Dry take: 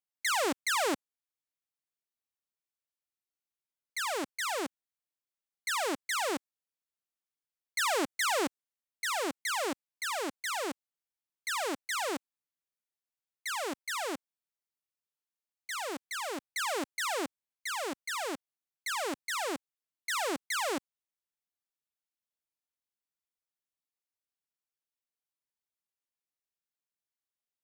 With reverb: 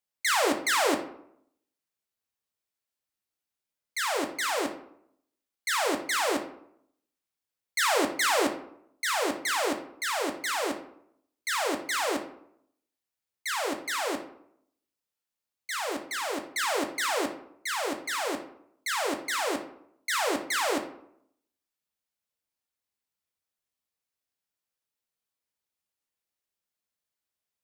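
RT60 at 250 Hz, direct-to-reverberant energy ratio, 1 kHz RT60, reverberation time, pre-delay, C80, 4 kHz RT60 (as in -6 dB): 0.80 s, 4.5 dB, 0.70 s, 0.70 s, 5 ms, 13.5 dB, 0.40 s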